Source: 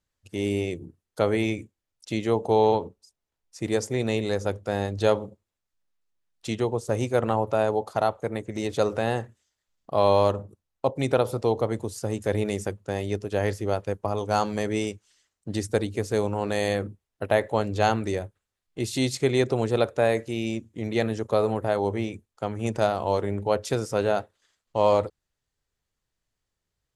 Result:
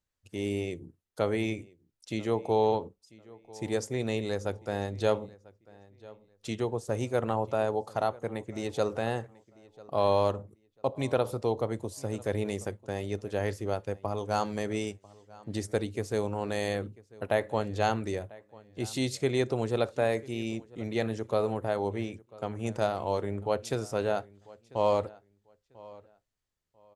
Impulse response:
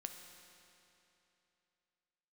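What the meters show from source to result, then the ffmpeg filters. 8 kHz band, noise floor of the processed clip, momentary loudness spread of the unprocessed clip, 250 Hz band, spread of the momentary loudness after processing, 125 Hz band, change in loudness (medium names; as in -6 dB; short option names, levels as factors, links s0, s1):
-5.0 dB, -75 dBFS, 10 LU, -5.0 dB, 12 LU, -5.0 dB, -5.0 dB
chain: -filter_complex "[0:a]asplit=2[s0][s1];[s1]adelay=994,lowpass=f=4400:p=1,volume=0.0794,asplit=2[s2][s3];[s3]adelay=994,lowpass=f=4400:p=1,volume=0.24[s4];[s0][s2][s4]amix=inputs=3:normalize=0,asplit=2[s5][s6];[1:a]atrim=start_sample=2205,atrim=end_sample=3087[s7];[s6][s7]afir=irnorm=-1:irlink=0,volume=0.398[s8];[s5][s8]amix=inputs=2:normalize=0,volume=0.447"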